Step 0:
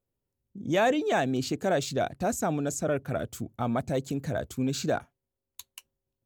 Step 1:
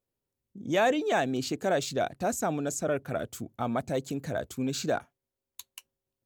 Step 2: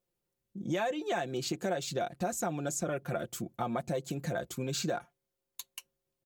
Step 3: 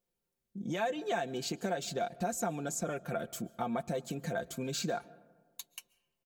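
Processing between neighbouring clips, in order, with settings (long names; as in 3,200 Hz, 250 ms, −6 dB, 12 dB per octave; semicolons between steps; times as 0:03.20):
low-shelf EQ 160 Hz −7.5 dB
comb filter 5.7 ms, depth 64%; downward compressor 5 to 1, threshold −30 dBFS, peak gain reduction 11.5 dB
comb filter 4.4 ms, depth 37%; on a send at −22 dB: convolution reverb RT60 1.5 s, pre-delay 100 ms; on the sum: level −2 dB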